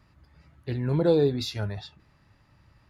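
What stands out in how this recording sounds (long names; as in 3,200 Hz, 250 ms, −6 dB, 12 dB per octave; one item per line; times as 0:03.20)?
background noise floor −63 dBFS
spectral slope −6.5 dB per octave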